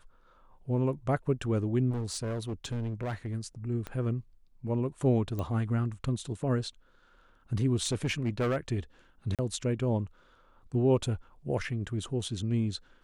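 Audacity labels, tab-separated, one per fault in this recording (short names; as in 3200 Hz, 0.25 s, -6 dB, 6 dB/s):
1.900000	3.350000	clipped -30 dBFS
3.870000	3.870000	pop -23 dBFS
5.390000	5.390000	pop -22 dBFS
7.820000	8.570000	clipped -24.5 dBFS
9.350000	9.390000	gap 37 ms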